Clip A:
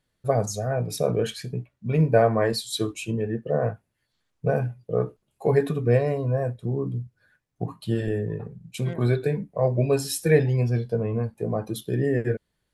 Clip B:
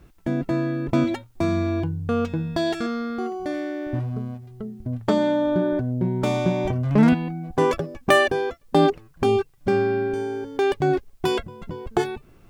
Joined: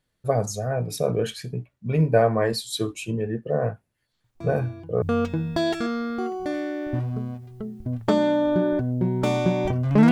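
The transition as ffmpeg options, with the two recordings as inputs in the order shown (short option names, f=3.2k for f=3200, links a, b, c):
-filter_complex "[1:a]asplit=2[a][b];[0:a]apad=whole_dur=10.11,atrim=end=10.11,atrim=end=5.022[c];[b]atrim=start=2.018:end=7.11[d];[a]atrim=start=1.24:end=2.02,asetpts=PTS-STARTPTS,volume=-16.5dB,afade=t=in:d=0.004:c=hsin,afade=t=out:st=0.776:d=0.004:c=hsin,adelay=4240[e];[c][d]acrossfade=d=0.004:c1=hsin:c2=hsin[f];[f][e]amix=inputs=2:normalize=0"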